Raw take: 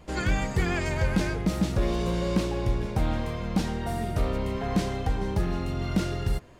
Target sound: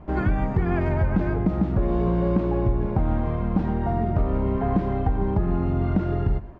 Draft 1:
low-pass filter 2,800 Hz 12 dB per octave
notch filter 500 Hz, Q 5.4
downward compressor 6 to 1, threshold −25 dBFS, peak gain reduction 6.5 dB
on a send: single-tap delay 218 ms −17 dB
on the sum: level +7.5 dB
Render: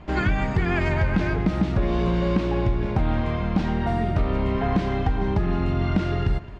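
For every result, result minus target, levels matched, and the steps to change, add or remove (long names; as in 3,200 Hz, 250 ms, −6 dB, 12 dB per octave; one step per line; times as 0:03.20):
echo 92 ms late; 2,000 Hz band +7.5 dB
change: single-tap delay 126 ms −17 dB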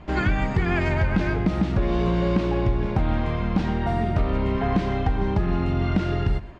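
2,000 Hz band +7.5 dB
change: low-pass filter 1,100 Hz 12 dB per octave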